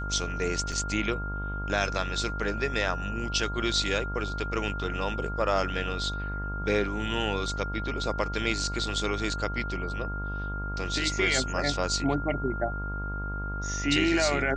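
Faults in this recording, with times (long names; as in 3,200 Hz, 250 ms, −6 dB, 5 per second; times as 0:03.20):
mains buzz 50 Hz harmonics 26 −34 dBFS
whistle 1,400 Hz −35 dBFS
0:00.72: drop-out 4.5 ms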